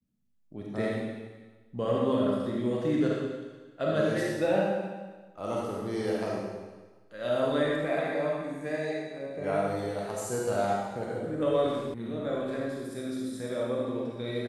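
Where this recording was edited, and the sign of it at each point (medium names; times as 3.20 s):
11.94 s: sound stops dead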